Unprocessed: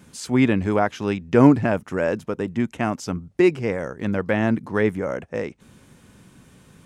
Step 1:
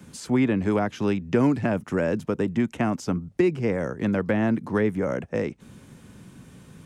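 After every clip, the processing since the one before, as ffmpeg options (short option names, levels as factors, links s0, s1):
-filter_complex "[0:a]equalizer=f=160:w=0.51:g=4.5,acrossover=split=150|330|1900[s0][s1][s2][s3];[s0]acompressor=threshold=0.02:ratio=4[s4];[s1]acompressor=threshold=0.0562:ratio=4[s5];[s2]acompressor=threshold=0.0562:ratio=4[s6];[s3]acompressor=threshold=0.0126:ratio=4[s7];[s4][s5][s6][s7]amix=inputs=4:normalize=0"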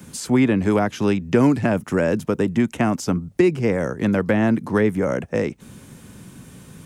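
-af "highshelf=f=7900:g=9.5,volume=1.68"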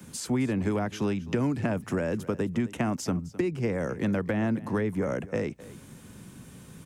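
-filter_complex "[0:a]acrossover=split=130[s0][s1];[s1]acompressor=threshold=0.1:ratio=6[s2];[s0][s2]amix=inputs=2:normalize=0,aecho=1:1:261:0.126,volume=0.562"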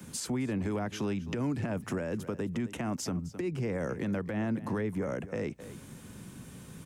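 -af "alimiter=level_in=1.06:limit=0.0631:level=0:latency=1:release=169,volume=0.944"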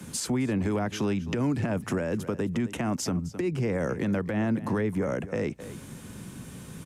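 -af "aresample=32000,aresample=44100,volume=1.78"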